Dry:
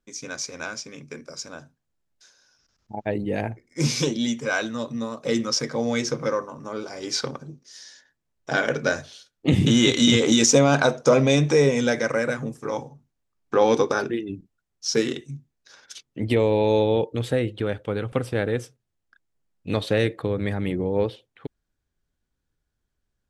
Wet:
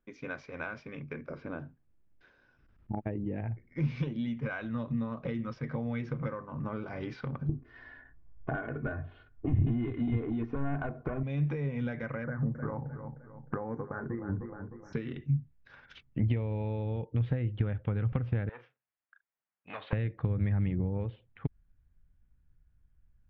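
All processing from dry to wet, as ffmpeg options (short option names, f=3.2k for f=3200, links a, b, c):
-filter_complex "[0:a]asettb=1/sr,asplit=3[a][b][c];[a]atrim=end=1.304[d];[b]atrim=start=1.3:end=3.41,asetpts=PTS-STARTPTS,afade=t=in:d=0.004:c=qsin,afade=t=out:st=2.106:d=0.004:c=qsin,acrossover=split=3600[e][f];[f]acompressor=threshold=-55dB:ratio=4:attack=1:release=60[g];[e][g]amix=inputs=2:normalize=0,equalizer=f=320:w=1.2:g=10.5[h];[c]atrim=start=3.406[i];[d][h]acrossfade=d=0.004:c1=hsin:c2=qsin[j];[j][i]acrossfade=d=0.004:c1=qsin:c2=hsin,asettb=1/sr,asplit=3[k][l][m];[k]atrim=end=7.494[n];[l]atrim=start=7.49:end=11.23,asetpts=PTS-STARTPTS,afade=t=in:d=0.004:c=qsin,afade=t=out:st=3.736:d=0.004:c=qsin,lowpass=1.3k,aeval=exprs='0.562*sin(PI/2*1.78*val(0)/0.562)':c=same,aecho=1:1:2.8:0.64,atrim=end_sample=164934[o];[m]atrim=start=11.226[p];[n][o]acrossfade=d=0.004:c1=hsin:c2=qsin[q];[q][p]acrossfade=d=0.004:c1=qsin:c2=hsin,asettb=1/sr,asplit=3[r][s][t];[r]atrim=end=12.244[u];[s]atrim=start=12.24:end=14.93,asetpts=PTS-STARTPTS,afade=t=in:d=0.004:c=qsin,afade=t=out:st=2.686:d=0.004:c=qsin,asuperstop=centerf=3500:order=12:qfactor=0.85,asplit=2[v][w];[w]adelay=307,lowpass=f=3.7k:p=1,volume=-16dB,asplit=2[x][y];[y]adelay=307,lowpass=f=3.7k:p=1,volume=0.44,asplit=2[z][aa];[aa]adelay=307,lowpass=f=3.7k:p=1,volume=0.44,asplit=2[ab][ac];[ac]adelay=307,lowpass=f=3.7k:p=1,volume=0.44[ad];[v][x][z][ab][ad]amix=inputs=5:normalize=0,atrim=end_sample=118629[ae];[t]atrim=start=14.926[af];[u][ae]acrossfade=d=0.004:c1=hsin:c2=qsin[ag];[ag][af]acrossfade=d=0.004:c1=qsin:c2=hsin,asettb=1/sr,asplit=3[ah][ai][aj];[ah]atrim=end=18.494[ak];[ai]atrim=start=18.49:end=19.93,asetpts=PTS-STARTPTS,afade=t=in:d=0.004:c=qsin,afade=t=out:st=1.436:d=0.004:c=qsin,aeval=exprs='(tanh(12.6*val(0)+0.4)-tanh(0.4))/12.6':c=same,highpass=790,lowpass=3.3k,asplit=2[al][am];[am]adelay=42,volume=-14dB[an];[al][an]amix=inputs=2:normalize=0,atrim=end_sample=63504[ao];[aj]atrim=start=19.926[ap];[ak][ao]acrossfade=d=0.004:c1=hsin:c2=qsin[aq];[aq][ap]acrossfade=d=0.004:c1=qsin:c2=hsin,acompressor=threshold=-31dB:ratio=16,asubboost=boost=6.5:cutoff=150,lowpass=f=2.6k:w=0.5412,lowpass=f=2.6k:w=1.3066,volume=-1dB"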